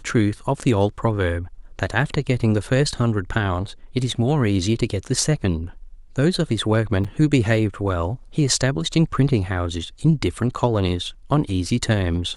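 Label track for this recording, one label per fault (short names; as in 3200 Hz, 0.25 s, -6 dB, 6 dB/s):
7.040000	7.050000	gap 6 ms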